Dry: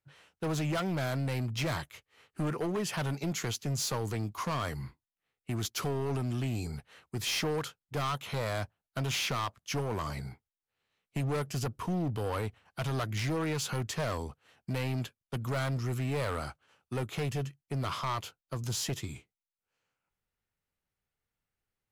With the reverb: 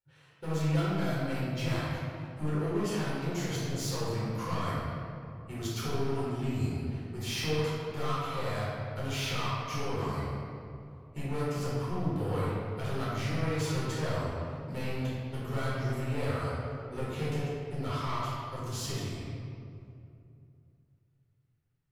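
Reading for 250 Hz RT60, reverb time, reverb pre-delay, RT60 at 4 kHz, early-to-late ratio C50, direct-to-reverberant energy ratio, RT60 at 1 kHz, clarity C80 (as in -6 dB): 3.2 s, 2.7 s, 8 ms, 1.4 s, -3.0 dB, -9.0 dB, 2.5 s, -1.0 dB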